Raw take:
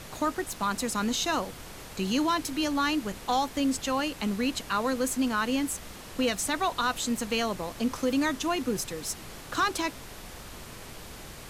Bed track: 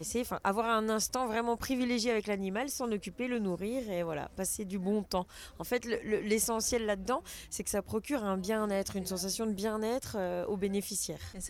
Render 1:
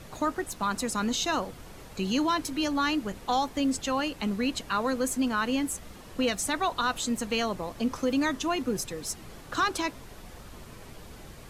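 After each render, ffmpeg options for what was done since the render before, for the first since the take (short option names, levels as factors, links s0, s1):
-af "afftdn=nr=7:nf=-44"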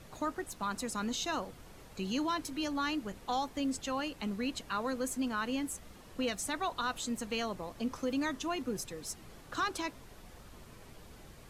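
-af "volume=0.447"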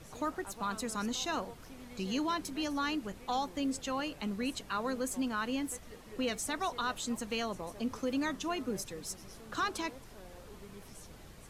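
-filter_complex "[1:a]volume=0.1[s0];[0:a][s0]amix=inputs=2:normalize=0"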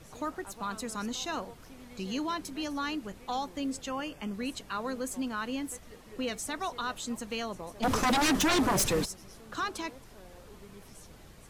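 -filter_complex "[0:a]asettb=1/sr,asplit=3[s0][s1][s2];[s0]atrim=end=3.894[s3];[s1]atrim=start=3.89:end=4.34,asetpts=PTS-STARTPTS,afade=t=in:d=0.004:c=qsin,afade=t=out:st=0.446:d=0.004:c=qsin,asuperstop=centerf=4000:order=12:qfactor=5.1[s4];[s2]atrim=start=4.336[s5];[s3][s4]acrossfade=d=0.004:c1=hsin:c2=qsin[s6];[s6][s5]acrossfade=d=0.004:c1=qsin:c2=hsin,asplit=3[s7][s8][s9];[s7]afade=t=out:st=7.82:d=0.02[s10];[s8]aeval=exprs='0.0794*sin(PI/2*5.01*val(0)/0.0794)':c=same,afade=t=in:st=7.82:d=0.02,afade=t=out:st=9.04:d=0.02[s11];[s9]afade=t=in:st=9.04:d=0.02[s12];[s10][s11][s12]amix=inputs=3:normalize=0"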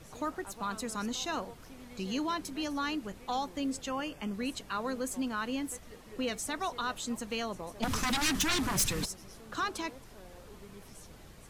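-filter_complex "[0:a]asettb=1/sr,asplit=3[s0][s1][s2];[s0]atrim=end=7.844[s3];[s1]atrim=start=7.84:end=9.03,asetpts=PTS-STARTPTS,afade=t=in:d=0.004:c=qsin,afade=t=out:st=1.186:d=0.004:c=qsin,equalizer=f=540:t=o:w=2.1:g=-11.5[s4];[s2]atrim=start=9.026[s5];[s3][s4]acrossfade=d=0.004:c1=hsin:c2=qsin[s6];[s6][s5]acrossfade=d=0.004:c1=qsin:c2=hsin"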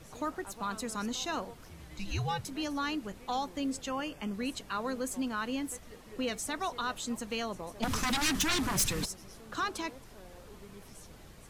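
-filter_complex "[0:a]asettb=1/sr,asplit=3[s0][s1][s2];[s0]atrim=end=1.704[s3];[s1]atrim=start=1.7:end=2.46,asetpts=PTS-STARTPTS,afade=t=in:d=0.004:c=qsin,afade=t=out:st=0.756:d=0.004:c=qsin,afreqshift=-180[s4];[s2]atrim=start=2.456[s5];[s3][s4]acrossfade=d=0.004:c1=hsin:c2=qsin[s6];[s6][s5]acrossfade=d=0.004:c1=qsin:c2=hsin"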